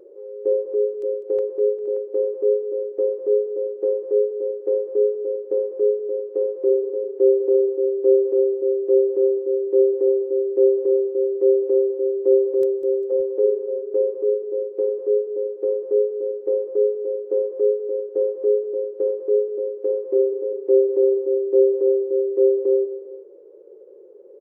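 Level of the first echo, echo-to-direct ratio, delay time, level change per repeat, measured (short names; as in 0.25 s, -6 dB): -14.5 dB, -13.5 dB, 0.2 s, -5.0 dB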